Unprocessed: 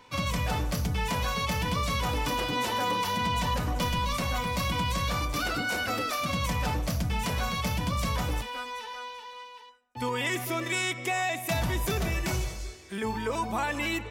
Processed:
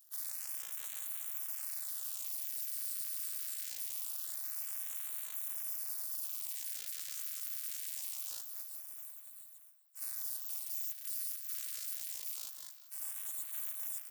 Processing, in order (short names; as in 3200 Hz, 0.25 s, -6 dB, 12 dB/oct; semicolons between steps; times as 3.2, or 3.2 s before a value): sample sorter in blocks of 128 samples; spectral gate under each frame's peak -25 dB weak; pre-emphasis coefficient 0.9; limiter -21 dBFS, peak gain reduction 5 dB; LFO notch sine 0.24 Hz 850–5100 Hz; on a send: echo with dull and thin repeats by turns 0.193 s, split 1600 Hz, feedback 53%, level -11 dB; on the sum: gain +2.5 dB